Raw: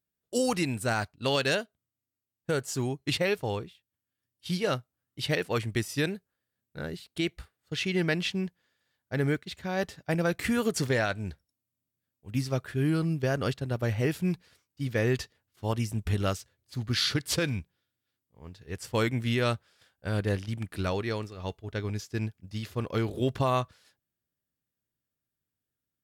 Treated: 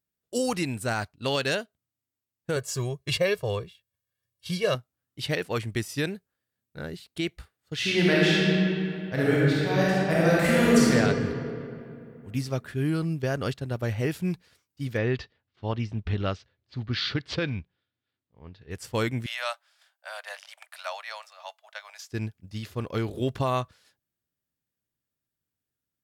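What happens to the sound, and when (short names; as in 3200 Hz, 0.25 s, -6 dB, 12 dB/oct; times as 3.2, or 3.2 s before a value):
2.56–4.75 comb 1.8 ms, depth 80%
7.75–10.91 reverb throw, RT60 2.7 s, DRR -7.5 dB
14.97–18.71 LPF 4300 Hz 24 dB/oct
19.26–22.12 steep high-pass 600 Hz 72 dB/oct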